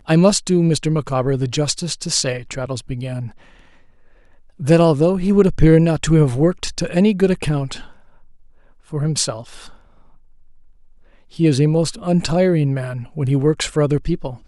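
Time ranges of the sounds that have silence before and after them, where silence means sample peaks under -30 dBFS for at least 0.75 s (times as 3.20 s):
4.60–7.86 s
8.92–9.68 s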